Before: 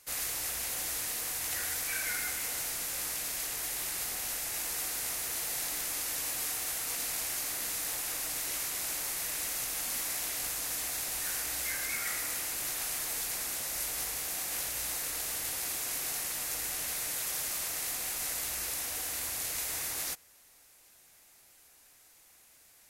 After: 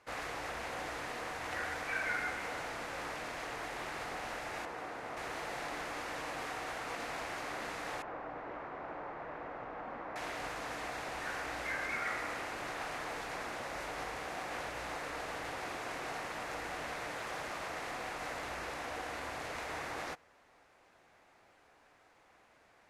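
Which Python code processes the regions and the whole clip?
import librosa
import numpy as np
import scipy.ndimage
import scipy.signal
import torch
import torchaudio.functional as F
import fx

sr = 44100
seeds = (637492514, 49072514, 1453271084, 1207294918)

y = fx.chain(x, sr, fx.highpass(hz=110.0, slope=6),
    fx.high_shelf(hz=2100.0, db=-10.0), at=(4.65, 5.17))
y = fx.chain(y, sr, fx.lowpass(hz=1200.0, slope=12),
    fx.low_shelf(hz=170.0, db=-4.5), at=(8.02, 10.16))
y = scipy.signal.sosfilt(scipy.signal.butter(2, 1100.0, 'lowpass', fs=sr, output='sos'), y)
y = fx.tilt_eq(y, sr, slope=2.5)
y = y * 10.0 ** (9.0 / 20.0)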